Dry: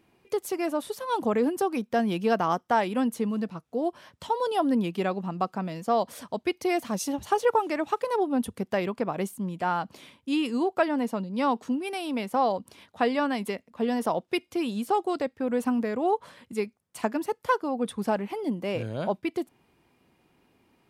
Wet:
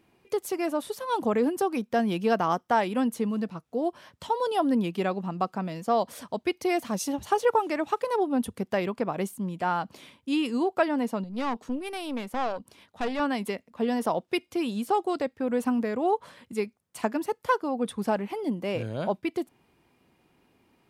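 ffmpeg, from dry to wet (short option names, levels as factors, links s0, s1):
-filter_complex "[0:a]asettb=1/sr,asplit=3[s0][s1][s2];[s0]atrim=end=11.244[s3];[s1]atrim=start=11.24:end=13.2,asetpts=PTS-STARTPTS,afade=t=in:d=0.004:c=qsin,afade=t=out:st=1.956:d=0.004:c=qsin,aeval=exprs='(tanh(15.8*val(0)+0.6)-tanh(0.6))/15.8':c=same[s4];[s2]atrim=start=13.196[s5];[s3][s4]acrossfade=d=0.004:c1=hsin:c2=qsin[s6];[s6][s5]acrossfade=d=0.004:c1=qsin:c2=hsin"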